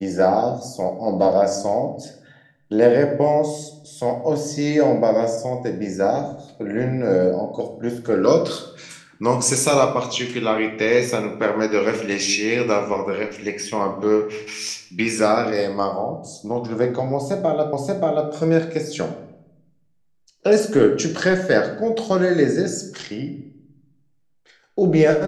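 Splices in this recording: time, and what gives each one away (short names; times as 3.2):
17.73 repeat of the last 0.58 s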